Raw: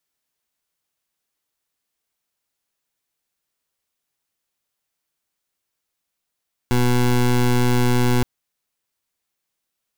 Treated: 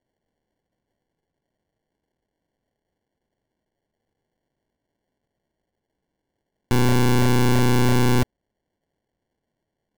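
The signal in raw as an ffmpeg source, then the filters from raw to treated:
-f lavfi -i "aevalsrc='0.15*(2*lt(mod(123*t,1),0.2)-1)':d=1.52:s=44100"
-af "acrusher=samples=35:mix=1:aa=0.000001"

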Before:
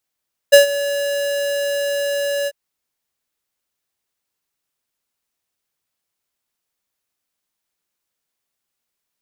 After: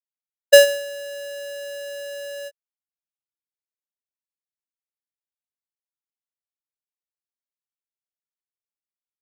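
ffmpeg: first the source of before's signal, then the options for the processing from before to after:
-f lavfi -i "aevalsrc='0.562*(2*lt(mod(568*t,1),0.5)-1)':d=1.995:s=44100,afade=t=in:d=0.017,afade=t=out:st=0.017:d=0.124:silence=0.158,afade=t=out:st=1.95:d=0.045"
-af "agate=range=-33dB:threshold=-15dB:ratio=3:detection=peak"

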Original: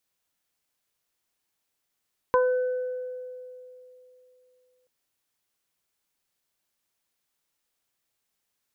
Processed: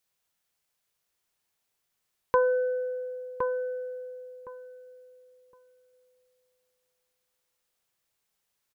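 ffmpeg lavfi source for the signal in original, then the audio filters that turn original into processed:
-f lavfi -i "aevalsrc='0.126*pow(10,-3*t/3.07)*sin(2*PI*504*t)+0.141*pow(10,-3*t/0.26)*sin(2*PI*1008*t)+0.0316*pow(10,-3*t/1.47)*sin(2*PI*1512*t)':d=2.53:s=44100"
-filter_complex "[0:a]equalizer=f=280:w=4.9:g=-9,asplit=2[a][b];[b]adelay=1064,lowpass=f=1.5k:p=1,volume=-5dB,asplit=2[c][d];[d]adelay=1064,lowpass=f=1.5k:p=1,volume=0.2,asplit=2[e][f];[f]adelay=1064,lowpass=f=1.5k:p=1,volume=0.2[g];[c][e][g]amix=inputs=3:normalize=0[h];[a][h]amix=inputs=2:normalize=0"

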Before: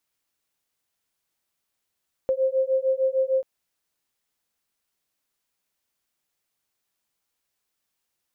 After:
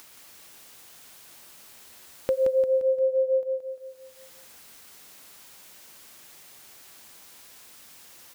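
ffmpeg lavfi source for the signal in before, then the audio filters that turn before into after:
-f lavfi -i "aevalsrc='0.0708*(sin(2*PI*524*t)+sin(2*PI*530.6*t))':d=1.14:s=44100"
-af "lowshelf=f=69:g=-7.5,acompressor=mode=upward:threshold=-28dB:ratio=2.5,aecho=1:1:174|348|522|696|870|1044:0.562|0.264|0.124|0.0584|0.0274|0.0129"

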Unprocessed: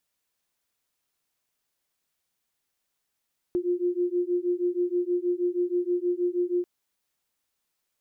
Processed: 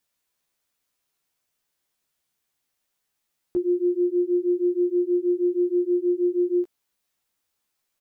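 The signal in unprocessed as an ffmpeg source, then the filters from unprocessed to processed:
-f lavfi -i "aevalsrc='0.0473*(sin(2*PI*351*t)+sin(2*PI*357.3*t))':d=3.09:s=44100"
-filter_complex "[0:a]asplit=2[a][b];[b]adelay=14,volume=-4dB[c];[a][c]amix=inputs=2:normalize=0"

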